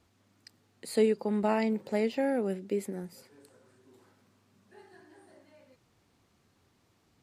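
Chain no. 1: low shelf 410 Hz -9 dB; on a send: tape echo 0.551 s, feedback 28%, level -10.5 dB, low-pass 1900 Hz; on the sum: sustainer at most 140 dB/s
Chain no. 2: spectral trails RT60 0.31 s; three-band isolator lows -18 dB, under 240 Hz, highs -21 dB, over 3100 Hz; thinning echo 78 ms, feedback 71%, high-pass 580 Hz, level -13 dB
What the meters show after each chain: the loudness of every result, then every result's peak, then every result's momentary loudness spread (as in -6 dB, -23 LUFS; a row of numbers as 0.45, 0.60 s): -34.5, -31.5 LUFS; -18.0, -16.5 dBFS; 17, 12 LU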